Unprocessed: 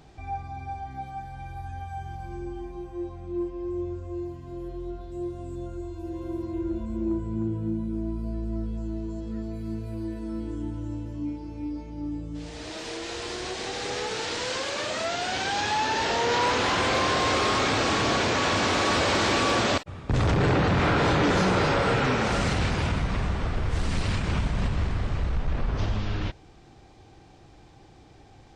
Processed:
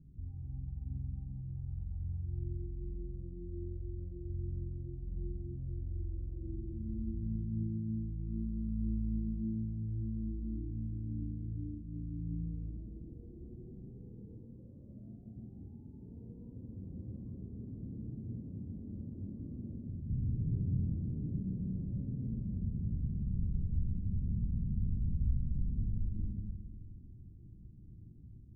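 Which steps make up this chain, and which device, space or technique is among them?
club heard from the street (peak limiter -28 dBFS, peak gain reduction 12 dB; low-pass 220 Hz 24 dB/octave; reverberation RT60 1.6 s, pre-delay 74 ms, DRR -1 dB); trim -2 dB

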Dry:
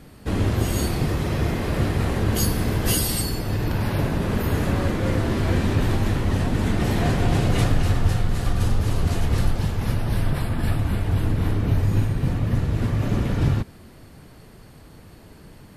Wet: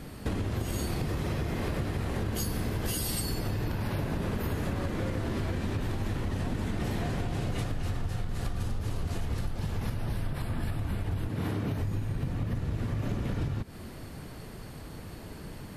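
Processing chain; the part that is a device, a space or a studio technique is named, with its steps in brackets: 11.28–11.80 s: high-pass 120 Hz 12 dB/octave; serial compression, peaks first (compression, threshold -27 dBFS, peak gain reduction 13.5 dB; compression 2.5:1, threshold -32 dBFS, peak gain reduction 5.5 dB); trim +3 dB

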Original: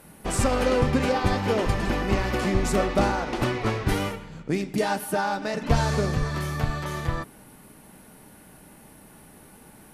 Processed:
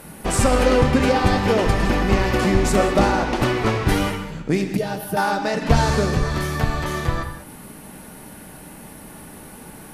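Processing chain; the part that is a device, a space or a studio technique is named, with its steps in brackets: gated-style reverb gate 220 ms flat, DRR 8.5 dB; 4.77–5.17 s: graphic EQ 125/250/1000/2000/4000/8000 Hz +10/-12/-11/-7/-4/-12 dB; parallel compression (in parallel at -3 dB: compression, threshold -40 dBFS, peak gain reduction 23 dB); on the sum: trim +4.5 dB

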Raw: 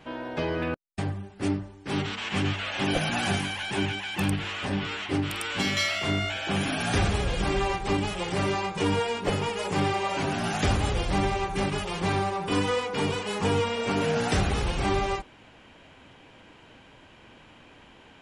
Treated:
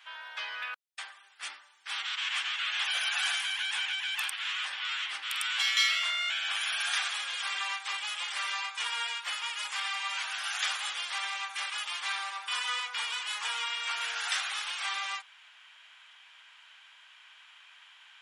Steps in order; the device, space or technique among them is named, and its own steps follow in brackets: 9.14–10.60 s: high-pass 590 Hz 6 dB/octave; headphones lying on a table (high-pass 1.2 kHz 24 dB/octave; peaking EQ 3.4 kHz +5 dB 0.27 oct)

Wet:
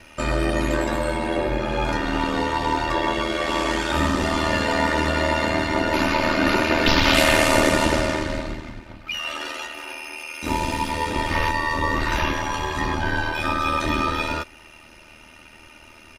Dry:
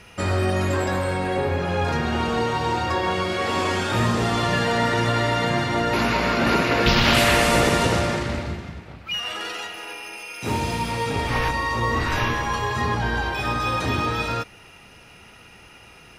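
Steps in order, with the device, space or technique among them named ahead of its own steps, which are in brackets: ring-modulated robot voice (ring modulator 39 Hz; comb 3.3 ms, depth 61%); trim +2 dB

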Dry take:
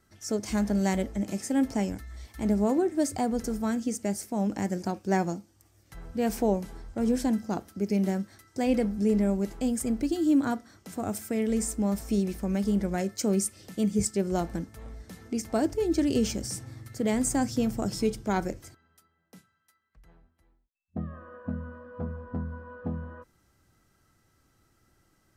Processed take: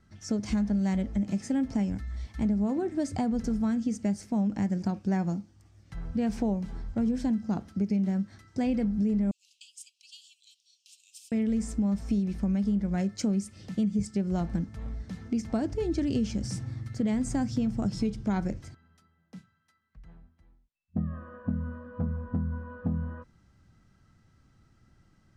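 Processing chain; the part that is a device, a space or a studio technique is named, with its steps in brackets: jukebox (low-pass 5.6 kHz 12 dB/octave; resonant low shelf 270 Hz +6.5 dB, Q 1.5; compression 5:1, threshold -25 dBFS, peak gain reduction 10 dB); 9.31–11.32 s: steep high-pass 2.6 kHz 96 dB/octave

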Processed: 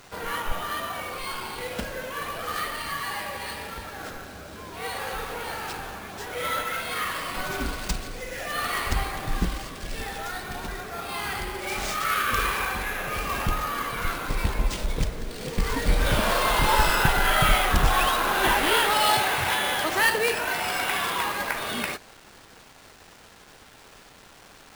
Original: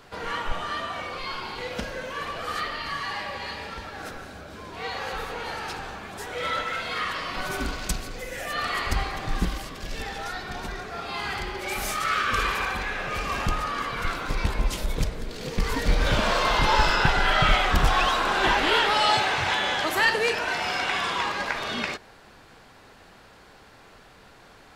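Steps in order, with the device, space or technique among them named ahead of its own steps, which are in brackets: early 8-bit sampler (sample-rate reducer 13 kHz, jitter 0%; bit crusher 8-bit)

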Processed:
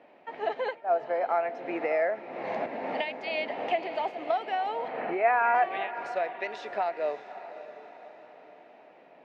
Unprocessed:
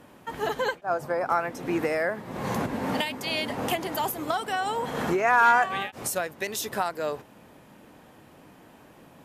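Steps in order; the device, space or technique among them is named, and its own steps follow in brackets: phone earpiece (cabinet simulation 420–3400 Hz, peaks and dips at 670 Hz +7 dB, 1.1 kHz -8 dB, 1.5 kHz -7 dB, 2.2 kHz +3 dB, 3.3 kHz -7 dB); 4.88–5.55 s: Chebyshev low-pass 2.6 kHz, order 5; echo that smears into a reverb 579 ms, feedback 48%, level -13 dB; trim -2 dB

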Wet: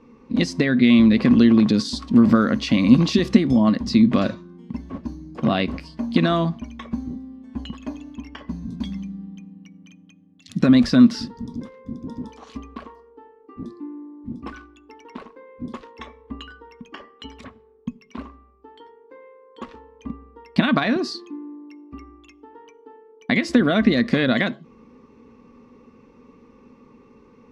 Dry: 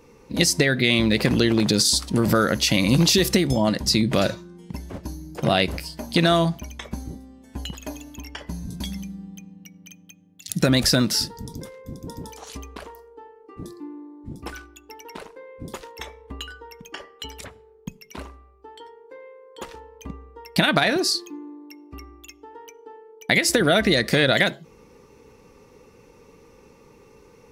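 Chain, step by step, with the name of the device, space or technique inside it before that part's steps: inside a cardboard box (low-pass 3.6 kHz 12 dB/octave; small resonant body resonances 240/1100 Hz, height 16 dB, ringing for 75 ms); trim -3.5 dB

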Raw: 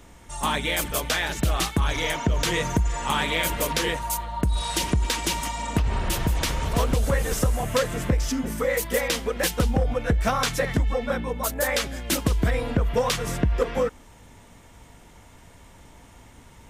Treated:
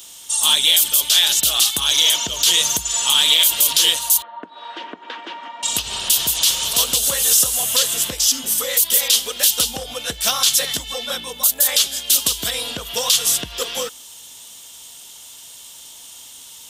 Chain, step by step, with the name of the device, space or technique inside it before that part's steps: tilt EQ +4.5 dB/octave; 4.22–5.63 s: elliptic band-pass 250–1800 Hz, stop band 80 dB; over-bright horn tweeter (resonant high shelf 2.6 kHz +6.5 dB, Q 3; peak limiter -3.5 dBFS, peak gain reduction 10 dB)

